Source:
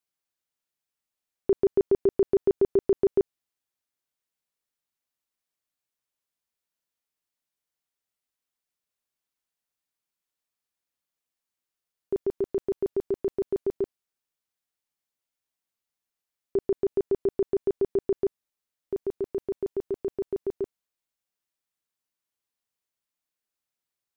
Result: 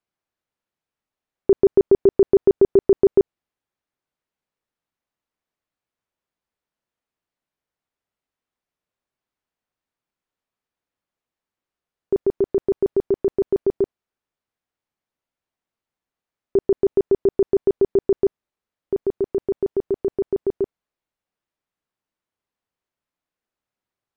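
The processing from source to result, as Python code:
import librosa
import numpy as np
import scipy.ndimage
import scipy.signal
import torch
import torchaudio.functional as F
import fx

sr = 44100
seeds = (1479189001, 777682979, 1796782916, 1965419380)

y = fx.lowpass(x, sr, hz=1300.0, slope=6)
y = y * 10.0 ** (8.0 / 20.0)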